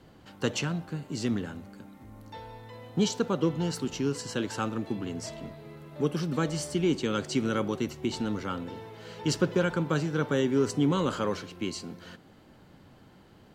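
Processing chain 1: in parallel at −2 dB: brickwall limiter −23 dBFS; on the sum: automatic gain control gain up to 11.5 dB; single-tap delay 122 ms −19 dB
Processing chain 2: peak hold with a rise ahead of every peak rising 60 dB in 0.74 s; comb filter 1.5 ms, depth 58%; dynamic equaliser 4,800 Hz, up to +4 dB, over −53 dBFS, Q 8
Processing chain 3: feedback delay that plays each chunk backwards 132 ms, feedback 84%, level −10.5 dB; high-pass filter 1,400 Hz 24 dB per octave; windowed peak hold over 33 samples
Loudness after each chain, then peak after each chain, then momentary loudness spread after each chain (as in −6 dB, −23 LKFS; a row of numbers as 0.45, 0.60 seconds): −17.0, −28.0, −45.0 LKFS; −2.0, −11.5, −22.0 dBFS; 15, 17, 17 LU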